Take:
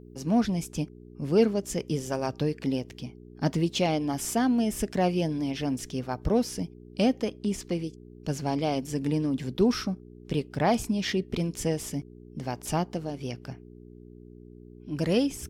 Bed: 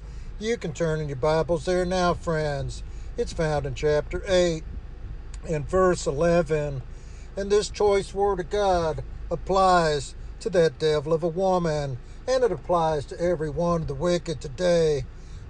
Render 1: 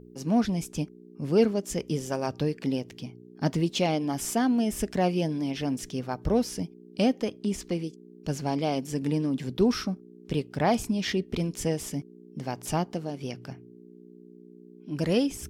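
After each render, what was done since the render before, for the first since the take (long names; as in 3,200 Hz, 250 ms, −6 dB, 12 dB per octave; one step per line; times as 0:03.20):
hum removal 60 Hz, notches 2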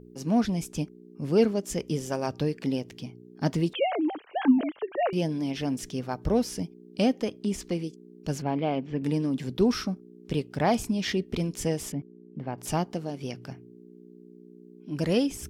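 0:03.73–0:05.13: three sine waves on the formant tracks
0:08.42–0:09.04: low-pass filter 3,000 Hz 24 dB per octave
0:11.92–0:12.58: high-frequency loss of the air 460 metres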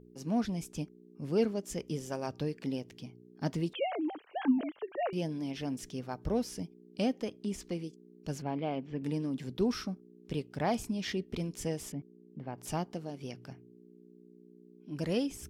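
level −7 dB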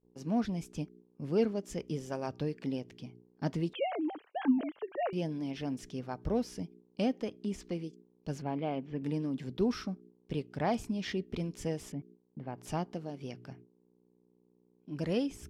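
noise gate −53 dBFS, range −26 dB
high-shelf EQ 6,500 Hz −10 dB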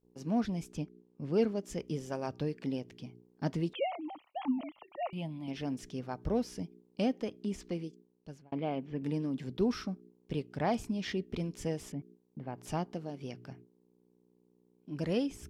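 0:00.77–0:01.34: high-frequency loss of the air 58 metres
0:03.91–0:05.48: phaser with its sweep stopped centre 1,600 Hz, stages 6
0:07.82–0:08.52: fade out linear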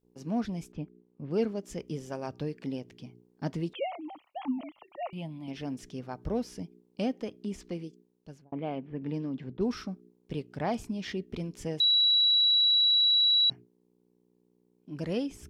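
0:00.72–0:01.31: high-frequency loss of the air 300 metres
0:08.44–0:09.77: low-pass that shuts in the quiet parts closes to 730 Hz, open at −25.5 dBFS
0:11.80–0:13.50: beep over 3,910 Hz −20 dBFS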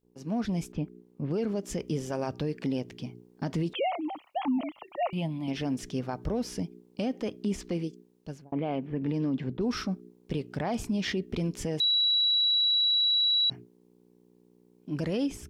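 automatic gain control gain up to 7.5 dB
brickwall limiter −21.5 dBFS, peak gain reduction 11.5 dB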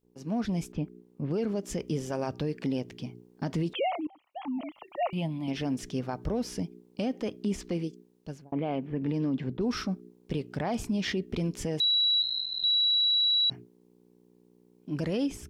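0:04.07–0:05.00: fade in linear, from −23.5 dB
0:12.22–0:12.64: one-pitch LPC vocoder at 8 kHz 180 Hz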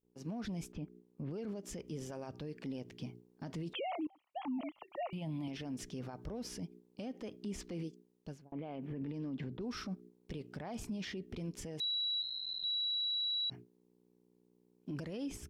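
brickwall limiter −32.5 dBFS, peak gain reduction 11 dB
expander for the loud parts 1.5 to 1, over −54 dBFS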